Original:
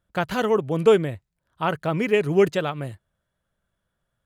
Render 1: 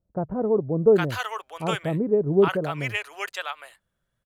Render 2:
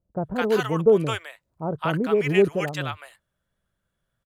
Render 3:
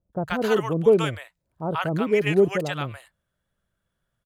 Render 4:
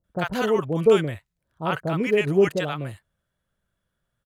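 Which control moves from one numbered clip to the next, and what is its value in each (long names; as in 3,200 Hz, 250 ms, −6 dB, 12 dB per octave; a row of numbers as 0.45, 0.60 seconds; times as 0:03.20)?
multiband delay without the direct sound, delay time: 810, 210, 130, 40 milliseconds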